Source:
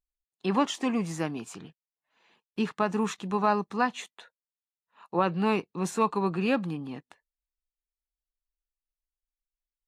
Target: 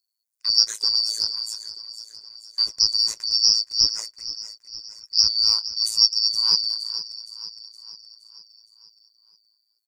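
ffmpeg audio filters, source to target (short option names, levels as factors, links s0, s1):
-filter_complex "[0:a]afftfilt=real='real(if(lt(b,272),68*(eq(floor(b/68),0)*1+eq(floor(b/68),1)*2+eq(floor(b/68),2)*3+eq(floor(b/68),3)*0)+mod(b,68),b),0)':imag='imag(if(lt(b,272),68*(eq(floor(b/68),0)*1+eq(floor(b/68),1)*2+eq(floor(b/68),2)*3+eq(floor(b/68),3)*0)+mod(b,68),b),0)':win_size=2048:overlap=0.75,aecho=1:1:2:0.55,aexciter=amount=7.5:drive=2.6:freq=4300,asplit=2[s0][s1];[s1]aecho=0:1:467|934|1401|1868|2335|2802:0.2|0.11|0.0604|0.0332|0.0183|0.01[s2];[s0][s2]amix=inputs=2:normalize=0,tremolo=f=110:d=0.919,volume=0.668"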